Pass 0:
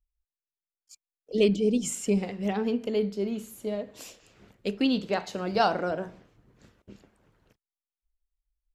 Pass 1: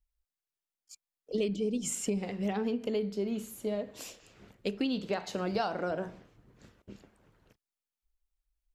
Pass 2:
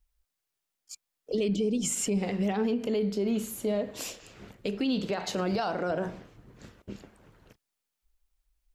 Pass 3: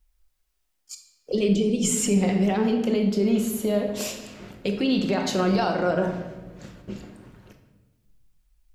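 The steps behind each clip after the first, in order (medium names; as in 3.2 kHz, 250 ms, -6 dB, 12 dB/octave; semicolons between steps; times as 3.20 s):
compression 6:1, threshold -28 dBFS, peak gain reduction 10.5 dB
peak limiter -28 dBFS, peak gain reduction 10 dB; trim +7.5 dB
simulated room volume 700 m³, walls mixed, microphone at 0.95 m; trim +4.5 dB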